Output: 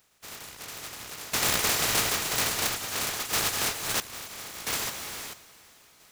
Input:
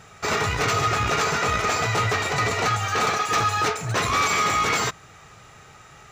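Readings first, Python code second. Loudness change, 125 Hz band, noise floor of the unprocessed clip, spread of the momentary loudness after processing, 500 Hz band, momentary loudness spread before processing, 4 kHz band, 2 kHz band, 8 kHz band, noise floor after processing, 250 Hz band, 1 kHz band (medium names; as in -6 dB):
-5.0 dB, -15.0 dB, -48 dBFS, 16 LU, -11.0 dB, 4 LU, -1.5 dB, -8.5 dB, +1.5 dB, -58 dBFS, -8.0 dB, -13.5 dB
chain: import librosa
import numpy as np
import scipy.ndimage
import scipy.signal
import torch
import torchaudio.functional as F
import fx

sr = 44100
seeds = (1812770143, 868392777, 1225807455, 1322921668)

p1 = fx.spec_flatten(x, sr, power=0.2)
p2 = fx.dereverb_blind(p1, sr, rt60_s=0.54)
p3 = p2 + fx.echo_diffused(p2, sr, ms=468, feedback_pct=46, wet_db=-9.0, dry=0)
p4 = fx.tremolo_random(p3, sr, seeds[0], hz=1.5, depth_pct=85)
y = p4 * 10.0 ** (-1.5 / 20.0)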